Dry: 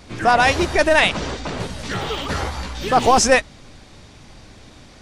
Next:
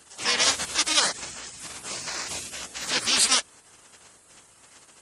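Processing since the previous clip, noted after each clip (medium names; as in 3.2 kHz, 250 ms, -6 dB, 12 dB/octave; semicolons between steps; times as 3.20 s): frequency weighting ITU-R 468; spectral gate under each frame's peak -15 dB weak; trim -1 dB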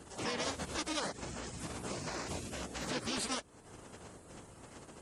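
tilt shelf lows +9.5 dB; compression 2.5:1, threshold -42 dBFS, peak gain reduction 13.5 dB; trim +2 dB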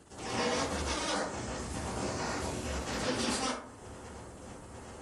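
plate-style reverb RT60 0.57 s, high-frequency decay 0.5×, pre-delay 100 ms, DRR -9 dB; trim -4.5 dB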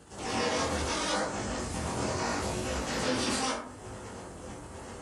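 in parallel at +2 dB: peak limiter -26 dBFS, peak gain reduction 6.5 dB; on the sum: chorus 0.77 Hz, delay 19 ms, depth 5 ms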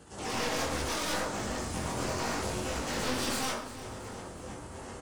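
one-sided wavefolder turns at -30.5 dBFS; feedback delay 346 ms, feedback 55%, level -15.5 dB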